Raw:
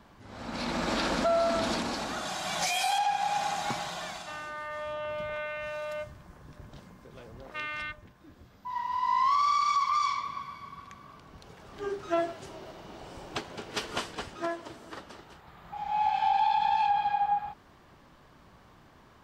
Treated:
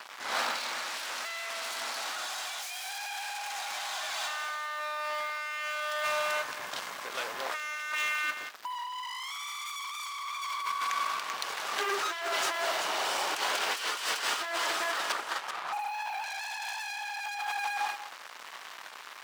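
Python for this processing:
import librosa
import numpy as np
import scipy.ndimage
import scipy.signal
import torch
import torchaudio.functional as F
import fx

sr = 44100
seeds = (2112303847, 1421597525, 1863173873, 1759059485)

y = np.minimum(x, 2.0 * 10.0 ** (-30.0 / 20.0) - x)
y = fx.lowpass(y, sr, hz=1600.0, slope=24, at=(15.12, 16.24))
y = y + 10.0 ** (-9.5 / 20.0) * np.pad(y, (int(387 * sr / 1000.0), 0))[:len(y)]
y = fx.leveller(y, sr, passes=5)
y = scipy.signal.sosfilt(scipy.signal.butter(2, 1000.0, 'highpass', fs=sr, output='sos'), y)
y = y + 10.0 ** (-13.5 / 20.0) * np.pad(y, (int(188 * sr / 1000.0), 0))[:len(y)]
y = fx.over_compress(y, sr, threshold_db=-31.0, ratio=-1.0)
y = F.gain(torch.from_numpy(y), -3.5).numpy()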